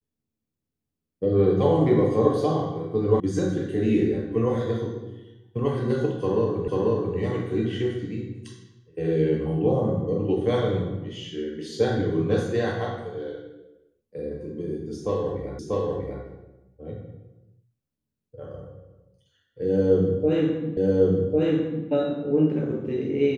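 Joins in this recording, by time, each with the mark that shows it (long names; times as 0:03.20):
0:03.20: cut off before it has died away
0:06.68: the same again, the last 0.49 s
0:15.59: the same again, the last 0.64 s
0:20.77: the same again, the last 1.1 s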